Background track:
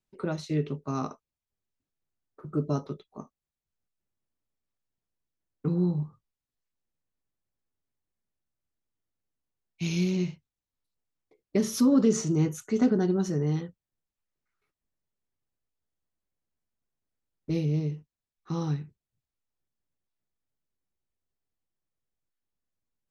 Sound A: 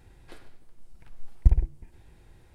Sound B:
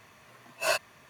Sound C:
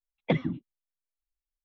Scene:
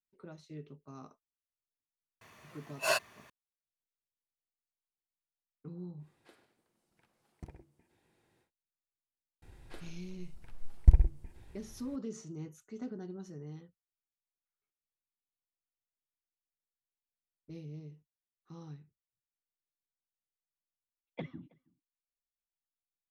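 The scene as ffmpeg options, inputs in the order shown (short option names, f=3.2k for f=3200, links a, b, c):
-filter_complex "[1:a]asplit=2[a][b];[0:a]volume=-18.5dB[c];[a]highpass=200[d];[3:a]asplit=2[e][f];[f]adelay=320.7,volume=-27dB,highshelf=f=4k:g=-7.22[g];[e][g]amix=inputs=2:normalize=0[h];[c]asplit=2[i][j];[i]atrim=end=20.894[k];[h]atrim=end=1.64,asetpts=PTS-STARTPTS,volume=-16dB[l];[j]atrim=start=22.526[m];[2:a]atrim=end=1.09,asetpts=PTS-STARTPTS,volume=-2.5dB,afade=t=in:d=0.004:c=hsin,afade=t=out:st=1.086:d=0.004:c=hsin,adelay=2210[n];[d]atrim=end=2.54,asetpts=PTS-STARTPTS,volume=-11dB,afade=t=in:d=0.1,afade=t=out:st=2.44:d=0.1,adelay=5970[o];[b]atrim=end=2.54,asetpts=PTS-STARTPTS,volume=-1.5dB,afade=t=in:d=0.004:c=hsin,afade=t=out:st=2.536:d=0.004:c=hsin,adelay=9420[p];[k][l]acrossfade=d=0.004:c1=hsin:c2=hsin[q];[q][m]acrossfade=d=0.004:c1=hsin:c2=hsin[r];[r][n][o][p]amix=inputs=4:normalize=0"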